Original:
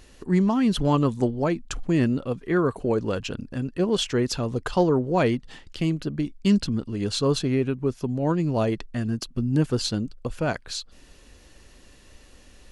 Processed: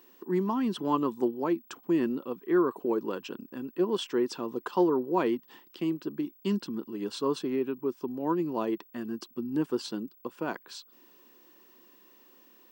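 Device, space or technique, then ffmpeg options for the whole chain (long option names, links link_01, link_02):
old television with a line whistle: -af "highpass=frequency=200:width=0.5412,highpass=frequency=200:width=1.3066,equalizer=frequency=350:width_type=q:width=4:gain=8,equalizer=frequency=620:width_type=q:width=4:gain=-5,equalizer=frequency=1000:width_type=q:width=4:gain=9,equalizer=frequency=2200:width_type=q:width=4:gain=-4,equalizer=frequency=4200:width_type=q:width=4:gain=-5,equalizer=frequency=6700:width_type=q:width=4:gain=-8,lowpass=frequency=8700:width=0.5412,lowpass=frequency=8700:width=1.3066,aeval=exprs='val(0)+0.00355*sin(2*PI*15734*n/s)':channel_layout=same,volume=-7.5dB"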